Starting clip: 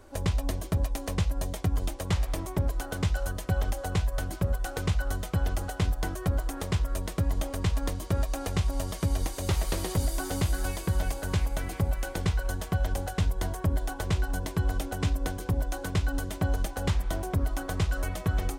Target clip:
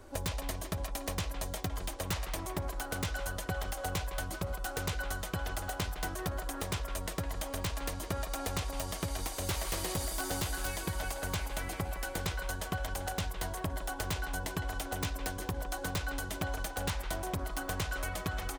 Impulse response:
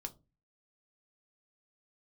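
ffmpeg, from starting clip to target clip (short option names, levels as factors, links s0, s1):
-filter_complex "[0:a]asettb=1/sr,asplit=3[s0][s1][s2];[s0]atrim=end=4.264[s3];[s1]atrim=start=4.26:end=4.66,asetpts=PTS-STARTPTS,afade=t=in:d=0.004:c=qsin,afade=t=out:st=0.396:d=0.004:c=qsin,bandreject=f=1700:w=7.8[s4];[s2]atrim=start=4.656[s5];[s3][s4]acrossfade=d=0.004:c1=hsin:c2=qsin[s6];[s6][s5]acrossfade=d=0.004:c1=qsin:c2=hsin,acrossover=split=630[s7][s8];[s7]acompressor=threshold=0.0158:ratio=4[s9];[s8]aeval=exprs='(mod(22.4*val(0)+1,2)-1)/22.4':c=same[s10];[s9][s10]amix=inputs=2:normalize=0,asplit=2[s11][s12];[s12]adelay=160,highpass=300,lowpass=3400,asoftclip=type=hard:threshold=0.0266,volume=0.398[s13];[s11][s13]amix=inputs=2:normalize=0"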